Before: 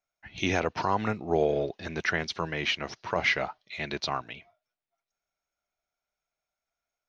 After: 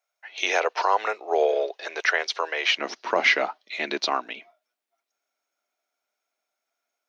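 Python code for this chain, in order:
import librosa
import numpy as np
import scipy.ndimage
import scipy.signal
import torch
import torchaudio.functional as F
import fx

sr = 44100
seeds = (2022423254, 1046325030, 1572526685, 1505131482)

y = fx.steep_highpass(x, sr, hz=fx.steps((0.0, 440.0), (2.77, 240.0)), slope=36)
y = y * 10.0 ** (6.0 / 20.0)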